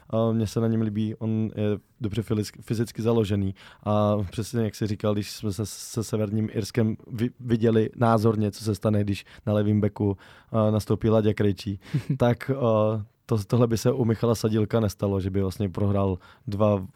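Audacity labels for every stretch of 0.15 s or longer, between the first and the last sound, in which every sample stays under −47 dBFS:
1.800000	2.010000	silence
13.060000	13.290000	silence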